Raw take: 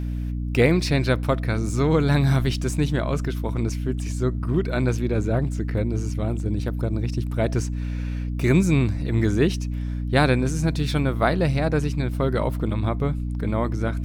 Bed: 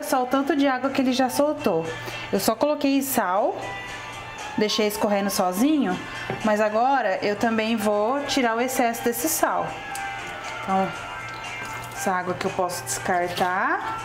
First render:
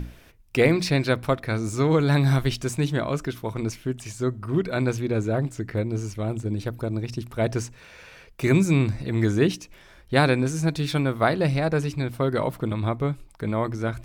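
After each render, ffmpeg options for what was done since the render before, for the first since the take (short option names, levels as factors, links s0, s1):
-af "bandreject=f=60:t=h:w=6,bandreject=f=120:t=h:w=6,bandreject=f=180:t=h:w=6,bandreject=f=240:t=h:w=6,bandreject=f=300:t=h:w=6"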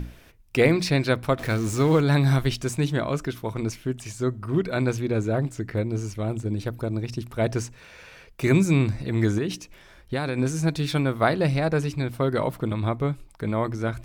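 -filter_complex "[0:a]asettb=1/sr,asplit=3[s0][s1][s2];[s0]atrim=end=1.394[s3];[s1]atrim=start=1.39:end=2.01,asetpts=PTS-STARTPTS,afade=t=in:d=0.004:c=qsin,afade=t=out:st=0.616:d=0.004:c=qsin,aeval=exprs='val(0)+0.5*0.0251*sgn(val(0))':c=same[s4];[s2]atrim=start=2.006[s5];[s3][s4]acrossfade=d=0.004:c1=hsin:c2=qsin[s6];[s6][s5]acrossfade=d=0.004:c1=qsin:c2=hsin,asettb=1/sr,asplit=3[s7][s8][s9];[s7]atrim=end=9.384[s10];[s8]atrim=start=9.38:end=10.38,asetpts=PTS-STARTPTS,afade=t=in:d=0.004:c=qsin,afade=t=out:st=0.996:d=0.004:c=qsin,acompressor=threshold=0.0794:ratio=6:attack=3.2:release=140:knee=1:detection=peak[s11];[s9]atrim=start=10.376[s12];[s10][s11]acrossfade=d=0.004:c1=hsin:c2=qsin[s13];[s13][s12]acrossfade=d=0.004:c1=qsin:c2=hsin"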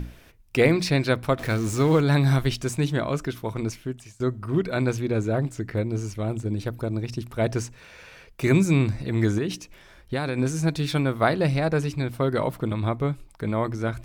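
-filter_complex "[0:a]asplit=2[s0][s1];[s0]atrim=end=4.2,asetpts=PTS-STARTPTS,afade=t=out:st=3.51:d=0.69:c=qsin:silence=0.1[s2];[s1]atrim=start=4.2,asetpts=PTS-STARTPTS,afade=t=in:d=0.004:c=hsin:silence=0.1[s3];[s2][s3]concat=n=2:v=0:a=1"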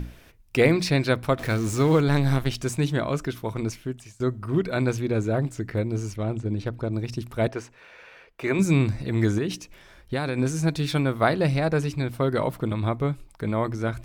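-filter_complex "[0:a]asettb=1/sr,asplit=3[s0][s1][s2];[s0]atrim=end=2.084[s3];[s1]atrim=start=2.08:end=2.55,asetpts=PTS-STARTPTS,afade=t=in:d=0.004:c=qsin,afade=t=out:st=0.466:d=0.004:c=qsin,aeval=exprs='if(lt(val(0),0),0.447*val(0),val(0))':c=same[s4];[s2]atrim=start=2.546[s5];[s3][s4]acrossfade=d=0.004:c1=hsin:c2=qsin[s6];[s6][s5]acrossfade=d=0.004:c1=qsin:c2=hsin,asettb=1/sr,asplit=3[s7][s8][s9];[s7]atrim=end=6.164[s10];[s8]atrim=start=6.16:end=6.93,asetpts=PTS-STARTPTS,afade=t=in:d=0.004:c=qsin,afade=t=out:st=0.766:d=0.004:c=qsin,adynamicsmooth=sensitivity=6:basefreq=5500[s11];[s9]atrim=start=6.926[s12];[s10][s11]acrossfade=d=0.004:c1=hsin:c2=qsin[s13];[s13][s12]acrossfade=d=0.004:c1=qsin:c2=hsin,asettb=1/sr,asplit=3[s14][s15][s16];[s14]atrim=end=7.484[s17];[s15]atrim=start=7.48:end=8.59,asetpts=PTS-STARTPTS,afade=t=in:d=0.004:c=qsin,afade=t=out:st=1.106:d=0.004:c=qsin,bass=f=250:g=-14,treble=f=4000:g=-12[s18];[s16]atrim=start=8.586[s19];[s17][s18]acrossfade=d=0.004:c1=hsin:c2=qsin[s20];[s20][s19]acrossfade=d=0.004:c1=qsin:c2=hsin"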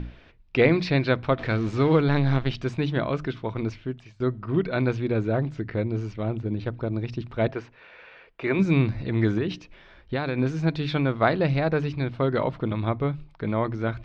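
-af "lowpass=f=4100:w=0.5412,lowpass=f=4100:w=1.3066,bandreject=f=50:t=h:w=6,bandreject=f=100:t=h:w=6,bandreject=f=150:t=h:w=6"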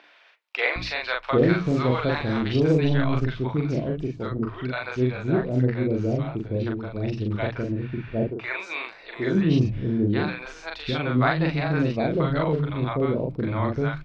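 -filter_complex "[0:a]asplit=2[s0][s1];[s1]adelay=40,volume=0.794[s2];[s0][s2]amix=inputs=2:normalize=0,acrossover=split=630[s3][s4];[s3]adelay=760[s5];[s5][s4]amix=inputs=2:normalize=0"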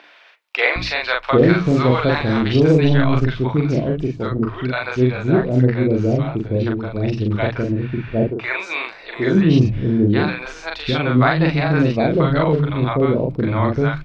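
-af "volume=2.24,alimiter=limit=0.708:level=0:latency=1"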